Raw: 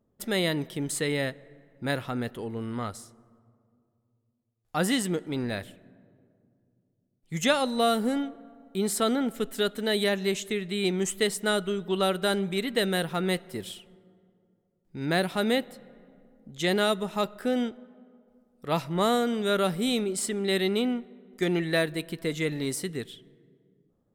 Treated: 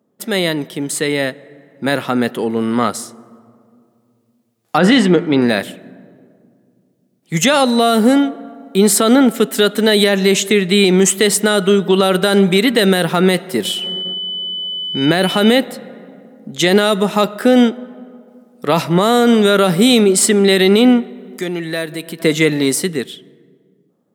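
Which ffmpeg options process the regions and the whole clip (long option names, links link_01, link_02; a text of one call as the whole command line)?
ffmpeg -i in.wav -filter_complex "[0:a]asettb=1/sr,asplit=3[link_01][link_02][link_03];[link_01]atrim=end=4.784[link_04];[link_02]atrim=start=4.78:end=5.42,asetpts=PTS-STARTPTS,afade=type=in:duration=0.004:curve=qsin,afade=type=out:start_time=0.636:duration=0.004:curve=qsin,lowpass=3600,bandreject=frequency=84.72:width_type=h:width=4,bandreject=frequency=169.44:width_type=h:width=4,bandreject=frequency=254.16:width_type=h:width=4,bandreject=frequency=338.88:width_type=h:width=4,bandreject=frequency=423.6:width_type=h:width=4,bandreject=frequency=508.32:width_type=h:width=4,bandreject=frequency=593.04:width_type=h:width=4,bandreject=frequency=677.76:width_type=h:width=4,bandreject=frequency=762.48:width_type=h:width=4,bandreject=frequency=847.2:width_type=h:width=4,bandreject=frequency=931.92:width_type=h:width=4,bandreject=frequency=1016.64:width_type=h:width=4,bandreject=frequency=1101.36:width_type=h:width=4,bandreject=frequency=1186.08:width_type=h:width=4,bandreject=frequency=1270.8:width_type=h:width=4,bandreject=frequency=1355.52:width_type=h:width=4,bandreject=frequency=1440.24:width_type=h:width=4,bandreject=frequency=1524.96:width_type=h:width=4,bandreject=frequency=1609.68:width_type=h:width=4,bandreject=frequency=1694.4:width_type=h:width=4,bandreject=frequency=1779.12:width_type=h:width=4,bandreject=frequency=1863.84:width_type=h:width=4,bandreject=frequency=1948.56:width_type=h:width=4,bandreject=frequency=2033.28:width_type=h:width=4,bandreject=frequency=2118:width_type=h:width=4,bandreject=frequency=2202.72:width_type=h:width=4,bandreject=frequency=2287.44:width_type=h:width=4,bandreject=frequency=2372.16:width_type=h:width=4,bandreject=frequency=2456.88:width_type=h:width=4[link_05];[link_03]atrim=start=5.416[link_06];[link_04][link_05]acrossfade=duration=0.004:curve1=hsin:curve2=qsin[link_07];[link_07][link_06]acrossfade=duration=0.004:curve1=qsin:curve2=hsin,asettb=1/sr,asplit=3[link_08][link_09][link_10];[link_08]atrim=end=13.654[link_11];[link_09]atrim=start=13.65:end=15.58,asetpts=PTS-STARTPTS,afade=type=in:duration=0.004:curve=qsin,afade=type=out:start_time=1.926:duration=0.004:curve=qsin,agate=range=-17dB:threshold=-59dB:ratio=16:release=100:detection=peak,acompressor=mode=upward:threshold=-38dB:ratio=2.5:attack=3.2:release=140:knee=2.83:detection=peak,aeval=exprs='val(0)+0.0126*sin(2*PI*3000*n/s)':channel_layout=same[link_12];[link_10]atrim=start=15.576[link_13];[link_11][link_12]acrossfade=duration=0.004:curve1=hsin:curve2=qsin[link_14];[link_14][link_13]acrossfade=duration=0.004:curve1=qsin:curve2=hsin,asettb=1/sr,asplit=3[link_15][link_16][link_17];[link_15]atrim=end=21.094[link_18];[link_16]atrim=start=21.09:end=22.2,asetpts=PTS-STARTPTS,afade=type=in:duration=0.004:curve=qsin,afade=type=out:start_time=1.106:duration=0.004:curve=qsin,highshelf=frequency=6900:gain=5,acompressor=threshold=-48dB:ratio=2:attack=3.2:release=140:knee=1:detection=peak[link_19];[link_17]atrim=start=22.196[link_20];[link_18][link_19]acrossfade=duration=0.004:curve1=hsin:curve2=qsin[link_21];[link_21][link_20]acrossfade=duration=0.004:curve1=qsin:curve2=hsin,highpass=frequency=160:width=0.5412,highpass=frequency=160:width=1.3066,dynaudnorm=framelen=380:gausssize=11:maxgain=11.5dB,alimiter=level_in=10.5dB:limit=-1dB:release=50:level=0:latency=1,volume=-1dB" out.wav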